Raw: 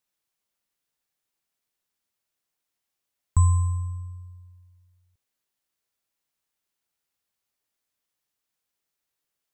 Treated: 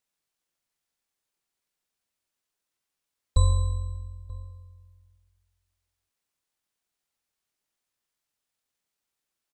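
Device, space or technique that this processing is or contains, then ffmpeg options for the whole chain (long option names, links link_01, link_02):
octave pedal: -filter_complex "[0:a]asplit=2[link_01][link_02];[link_02]asetrate=22050,aresample=44100,atempo=2,volume=-1dB[link_03];[link_01][link_03]amix=inputs=2:normalize=0,asplit=2[link_04][link_05];[link_05]adelay=932.9,volume=-21dB,highshelf=frequency=4000:gain=-21[link_06];[link_04][link_06]amix=inputs=2:normalize=0,volume=-4dB"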